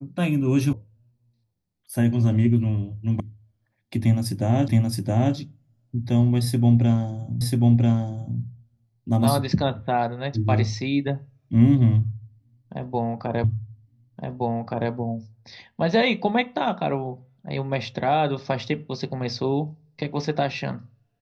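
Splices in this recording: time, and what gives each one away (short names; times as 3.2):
0.73 sound cut off
3.2 sound cut off
4.68 repeat of the last 0.67 s
7.41 repeat of the last 0.99 s
13.44 repeat of the last 1.47 s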